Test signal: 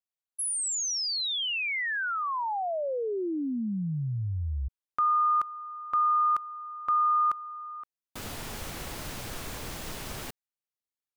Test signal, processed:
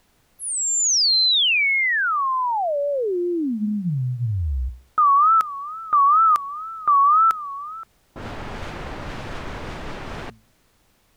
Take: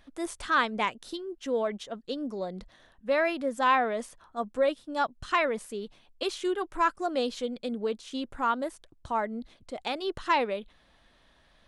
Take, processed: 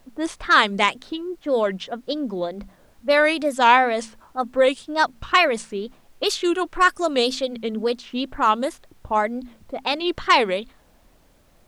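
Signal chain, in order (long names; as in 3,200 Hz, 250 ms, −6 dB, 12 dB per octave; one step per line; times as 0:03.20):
mains-hum notches 60/120/180/240 Hz
low-pass that shuts in the quiet parts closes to 570 Hz, open at −24.5 dBFS
high-shelf EQ 3,300 Hz +11.5 dB
tape wow and flutter 150 cents
background noise pink −69 dBFS
level +7.5 dB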